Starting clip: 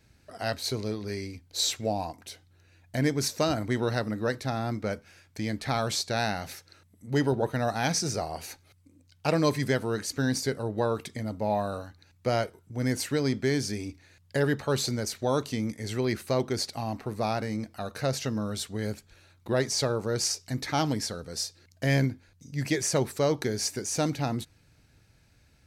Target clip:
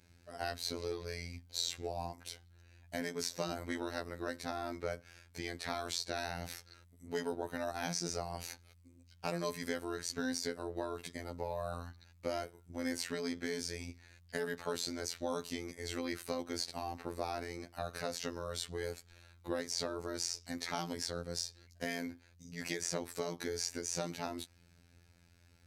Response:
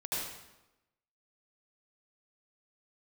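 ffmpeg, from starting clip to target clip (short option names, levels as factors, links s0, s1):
-filter_complex "[0:a]acrossover=split=320|7200[s0][s1][s2];[s0]acompressor=threshold=0.01:ratio=4[s3];[s1]acompressor=threshold=0.0224:ratio=4[s4];[s2]acompressor=threshold=0.00501:ratio=4[s5];[s3][s4][s5]amix=inputs=3:normalize=0,afftfilt=real='hypot(re,im)*cos(PI*b)':imag='0':win_size=2048:overlap=0.75"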